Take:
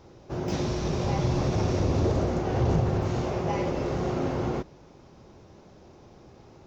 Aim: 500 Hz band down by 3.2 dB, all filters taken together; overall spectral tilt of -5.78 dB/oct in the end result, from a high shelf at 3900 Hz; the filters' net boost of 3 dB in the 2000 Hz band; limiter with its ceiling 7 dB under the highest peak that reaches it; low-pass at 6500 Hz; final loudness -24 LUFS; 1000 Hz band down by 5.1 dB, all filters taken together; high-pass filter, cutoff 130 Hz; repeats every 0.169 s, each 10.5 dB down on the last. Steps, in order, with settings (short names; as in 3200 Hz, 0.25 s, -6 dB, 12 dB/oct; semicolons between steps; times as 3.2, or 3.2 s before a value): HPF 130 Hz; LPF 6500 Hz; bell 500 Hz -3 dB; bell 1000 Hz -7 dB; bell 2000 Hz +5 dB; high shelf 3900 Hz +4 dB; limiter -23.5 dBFS; feedback echo 0.169 s, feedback 30%, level -10.5 dB; gain +8.5 dB